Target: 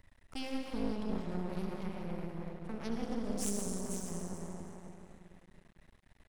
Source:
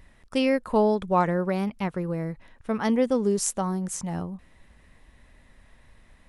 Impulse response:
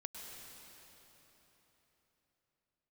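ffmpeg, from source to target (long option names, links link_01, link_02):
-filter_complex "[0:a]asplit=2[link_01][link_02];[link_02]adelay=274,lowpass=frequency=2000:poles=1,volume=-8dB,asplit=2[link_03][link_04];[link_04]adelay=274,lowpass=frequency=2000:poles=1,volume=0.47,asplit=2[link_05][link_06];[link_06]adelay=274,lowpass=frequency=2000:poles=1,volume=0.47,asplit=2[link_07][link_08];[link_08]adelay=274,lowpass=frequency=2000:poles=1,volume=0.47,asplit=2[link_09][link_10];[link_10]adelay=274,lowpass=frequency=2000:poles=1,volume=0.47[link_11];[link_01][link_03][link_05][link_07][link_09][link_11]amix=inputs=6:normalize=0,acrossover=split=290|3000[link_12][link_13][link_14];[link_13]acompressor=threshold=-37dB:ratio=6[link_15];[link_12][link_15][link_14]amix=inputs=3:normalize=0[link_16];[1:a]atrim=start_sample=2205,asetrate=70560,aresample=44100[link_17];[link_16][link_17]afir=irnorm=-1:irlink=0,aeval=exprs='max(val(0),0)':channel_layout=same,volume=1.5dB"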